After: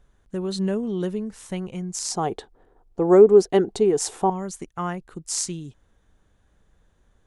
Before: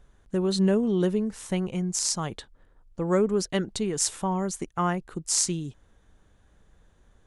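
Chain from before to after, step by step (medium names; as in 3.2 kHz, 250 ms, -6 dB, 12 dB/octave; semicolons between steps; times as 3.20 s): 2.10–4.30 s: small resonant body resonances 410/730 Hz, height 16 dB, ringing for 20 ms; trim -2.5 dB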